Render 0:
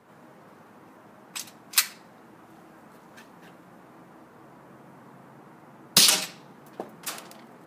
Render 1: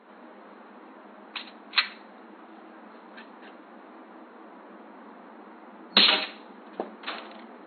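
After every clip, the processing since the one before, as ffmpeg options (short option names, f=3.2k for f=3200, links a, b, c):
-af "afftfilt=real='re*between(b*sr/4096,190,4300)':imag='im*between(b*sr/4096,190,4300)':win_size=4096:overlap=0.75,volume=3.5dB"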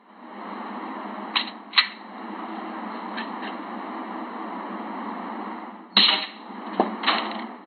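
-af "aecho=1:1:1:0.48,dynaudnorm=f=140:g=5:m=15dB,volume=-1dB"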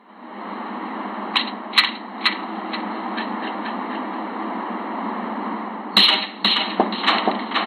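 -filter_complex "[0:a]asplit=2[a][b];[b]adelay=478,lowpass=f=3.9k:p=1,volume=-3dB,asplit=2[c][d];[d]adelay=478,lowpass=f=3.9k:p=1,volume=0.3,asplit=2[e][f];[f]adelay=478,lowpass=f=3.9k:p=1,volume=0.3,asplit=2[g][h];[h]adelay=478,lowpass=f=3.9k:p=1,volume=0.3[i];[a][c][e][g][i]amix=inputs=5:normalize=0,acontrast=27,volume=-1dB"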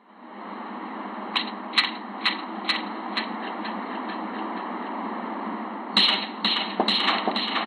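-af "aecho=1:1:914:0.596,aresample=22050,aresample=44100,volume=-5.5dB"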